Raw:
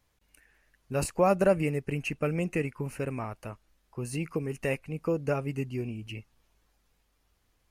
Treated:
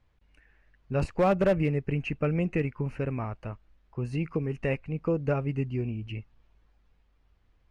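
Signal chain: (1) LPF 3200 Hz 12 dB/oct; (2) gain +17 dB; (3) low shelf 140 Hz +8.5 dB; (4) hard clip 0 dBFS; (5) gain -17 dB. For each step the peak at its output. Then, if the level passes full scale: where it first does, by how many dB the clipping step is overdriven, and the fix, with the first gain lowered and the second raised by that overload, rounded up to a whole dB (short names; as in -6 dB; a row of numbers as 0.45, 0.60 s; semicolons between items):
-12.0, +5.0, +7.0, 0.0, -17.0 dBFS; step 2, 7.0 dB; step 2 +10 dB, step 5 -10 dB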